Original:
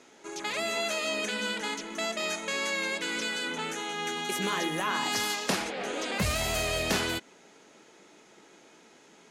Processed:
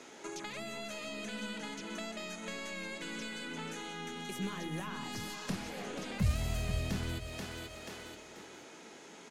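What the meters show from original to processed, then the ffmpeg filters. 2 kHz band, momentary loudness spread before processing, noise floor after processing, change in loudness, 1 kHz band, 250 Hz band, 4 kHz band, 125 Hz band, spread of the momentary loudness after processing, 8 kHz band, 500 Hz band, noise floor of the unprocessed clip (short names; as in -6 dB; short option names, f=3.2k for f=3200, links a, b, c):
-11.5 dB, 5 LU, -52 dBFS, -9.5 dB, -11.5 dB, -4.0 dB, -11.5 dB, +2.0 dB, 13 LU, -11.5 dB, -10.5 dB, -57 dBFS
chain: -filter_complex "[0:a]aecho=1:1:484|968|1452:0.266|0.0772|0.0224,aeval=exprs='(tanh(7.94*val(0)+0.2)-tanh(0.2))/7.94':c=same,acrossover=split=190[a][b];[b]acompressor=threshold=-45dB:ratio=8[c];[a][c]amix=inputs=2:normalize=0,volume=4dB"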